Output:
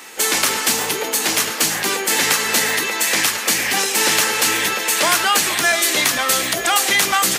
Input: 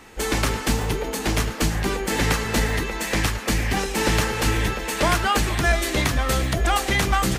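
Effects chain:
high-pass filter 200 Hz 12 dB per octave
spectral tilt +3 dB per octave
in parallel at +1 dB: brickwall limiter −17.5 dBFS, peak gain reduction 13.5 dB

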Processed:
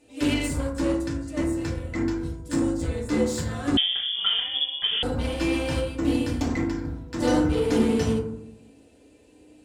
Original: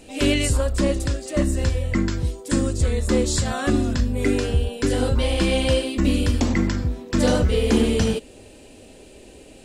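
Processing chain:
high-pass filter 92 Hz 6 dB per octave
harmonic generator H 7 −22 dB, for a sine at −7.5 dBFS
0:06.59–0:07.22: downward compressor, threshold −21 dBFS, peak gain reduction 5 dB
feedback delay network reverb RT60 0.71 s, low-frequency decay 1.5×, high-frequency decay 0.35×, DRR −3.5 dB
0:03.77–0:05.03: voice inversion scrambler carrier 3,400 Hz
level −9 dB

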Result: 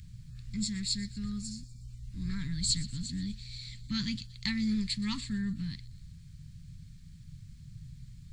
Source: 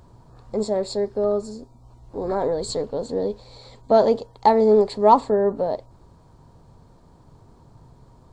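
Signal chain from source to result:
elliptic band-stop filter 170–2,100 Hz, stop band 70 dB
on a send: delay with a high-pass on its return 122 ms, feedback 54%, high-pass 3,200 Hz, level −16.5 dB
on the sum: level +4 dB

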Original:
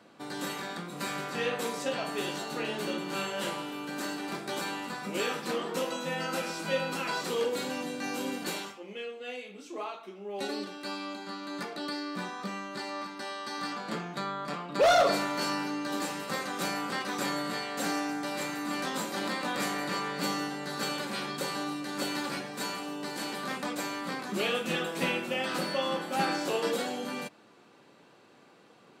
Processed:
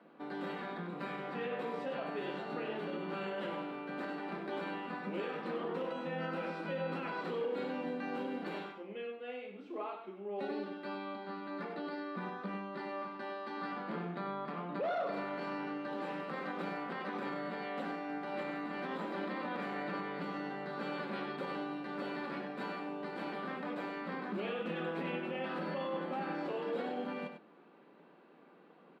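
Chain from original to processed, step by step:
high-frequency loss of the air 460 metres
brickwall limiter −29 dBFS, peak gain reduction 11 dB
elliptic high-pass filter 160 Hz
on a send: single-tap delay 97 ms −8 dB
on the sum: level −1 dB

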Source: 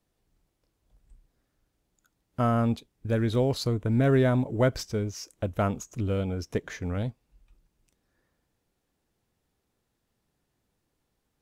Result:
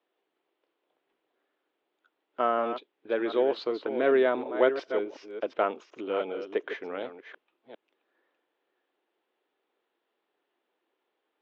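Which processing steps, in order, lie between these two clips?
delay that plays each chunk backwards 369 ms, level −9 dB
elliptic band-pass filter 350–3,300 Hz, stop band 60 dB
level +2.5 dB

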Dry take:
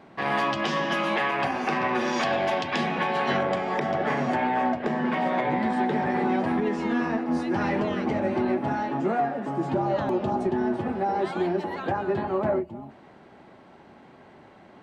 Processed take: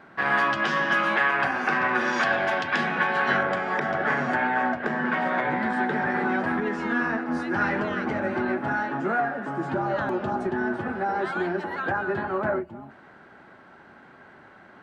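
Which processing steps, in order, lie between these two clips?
parametric band 1,500 Hz +13.5 dB 0.62 octaves
level −2.5 dB

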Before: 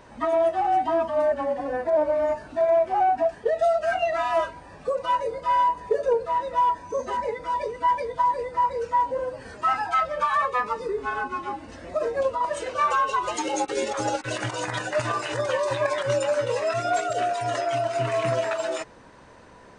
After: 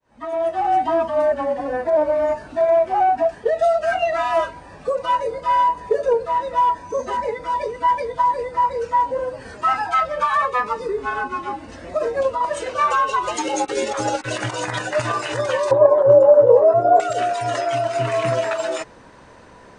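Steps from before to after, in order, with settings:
fade in at the beginning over 0.71 s
0:15.71–0:17.00: drawn EQ curve 260 Hz 0 dB, 470 Hz +12 dB, 1,000 Hz +3 dB, 2,300 Hz −25 dB
level +4 dB

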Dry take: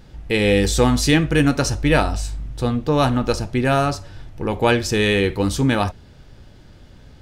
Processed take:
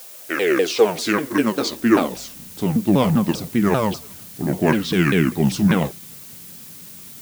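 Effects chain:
pitch shifter swept by a sawtooth −8.5 semitones, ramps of 197 ms
high-pass filter sweep 580 Hz → 170 Hz, 0:00.05–0:03.02
background noise blue −39 dBFS
level −1 dB

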